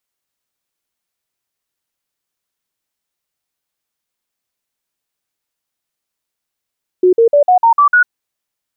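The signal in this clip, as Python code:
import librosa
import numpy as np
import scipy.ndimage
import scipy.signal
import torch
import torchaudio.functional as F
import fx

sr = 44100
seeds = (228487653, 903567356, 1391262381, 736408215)

y = fx.stepped_sweep(sr, from_hz=365.0, direction='up', per_octave=3, tones=7, dwell_s=0.1, gap_s=0.05, level_db=-5.5)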